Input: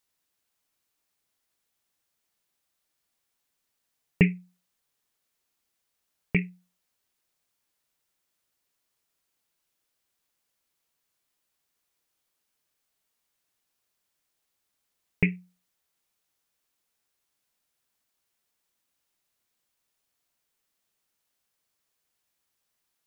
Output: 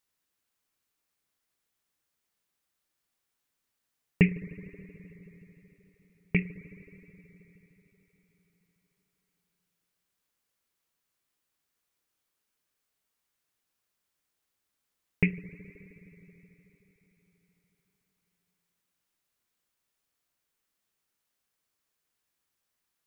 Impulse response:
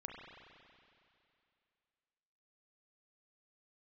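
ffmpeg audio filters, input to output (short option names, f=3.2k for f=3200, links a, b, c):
-filter_complex "[0:a]asplit=2[a][b];[b]asuperstop=centerf=780:order=4:qfactor=1.8[c];[1:a]atrim=start_sample=2205,asetrate=26901,aresample=44100,lowpass=2.9k[d];[c][d]afir=irnorm=-1:irlink=0,volume=-9dB[e];[a][e]amix=inputs=2:normalize=0,volume=-3dB"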